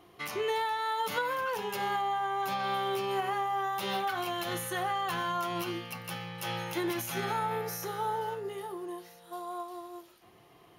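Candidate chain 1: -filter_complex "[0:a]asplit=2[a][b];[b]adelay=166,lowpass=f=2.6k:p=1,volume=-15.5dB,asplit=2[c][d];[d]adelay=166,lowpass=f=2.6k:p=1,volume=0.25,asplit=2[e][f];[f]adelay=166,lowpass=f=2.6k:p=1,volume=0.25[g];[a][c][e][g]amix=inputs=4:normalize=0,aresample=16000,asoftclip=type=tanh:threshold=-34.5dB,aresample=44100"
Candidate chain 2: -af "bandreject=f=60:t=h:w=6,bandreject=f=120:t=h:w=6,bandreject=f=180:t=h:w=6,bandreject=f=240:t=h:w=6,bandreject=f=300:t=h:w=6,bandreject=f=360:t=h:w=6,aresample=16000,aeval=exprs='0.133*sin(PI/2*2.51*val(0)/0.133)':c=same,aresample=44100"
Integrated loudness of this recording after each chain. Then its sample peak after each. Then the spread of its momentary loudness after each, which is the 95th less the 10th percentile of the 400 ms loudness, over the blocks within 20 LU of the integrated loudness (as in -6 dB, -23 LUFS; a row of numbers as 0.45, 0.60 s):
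-38.0, -23.0 LUFS; -31.0, -16.0 dBFS; 6, 8 LU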